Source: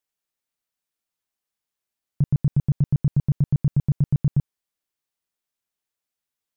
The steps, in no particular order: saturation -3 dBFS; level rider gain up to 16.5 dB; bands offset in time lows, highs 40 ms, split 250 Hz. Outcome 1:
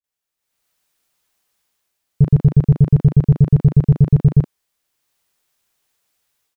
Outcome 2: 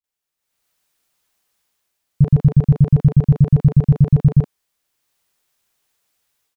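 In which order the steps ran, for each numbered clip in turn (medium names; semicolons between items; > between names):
level rider > bands offset in time > saturation; level rider > saturation > bands offset in time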